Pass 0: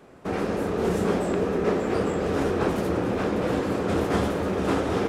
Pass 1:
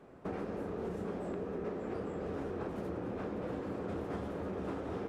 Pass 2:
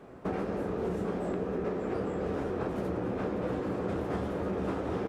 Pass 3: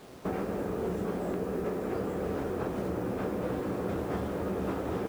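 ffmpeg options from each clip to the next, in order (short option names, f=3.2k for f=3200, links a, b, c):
-af "highshelf=f=2.4k:g=-10.5,acompressor=threshold=-31dB:ratio=6,volume=-5dB"
-filter_complex "[0:a]asplit=2[a][b];[b]adelay=16,volume=-12dB[c];[a][c]amix=inputs=2:normalize=0,volume=6dB"
-af "acrusher=bits=8:mix=0:aa=0.000001"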